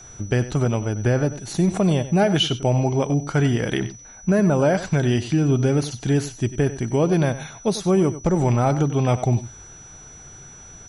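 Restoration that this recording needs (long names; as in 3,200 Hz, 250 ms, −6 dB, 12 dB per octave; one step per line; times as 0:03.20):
notch filter 5,900 Hz, Q 30
echo removal 95 ms −14 dB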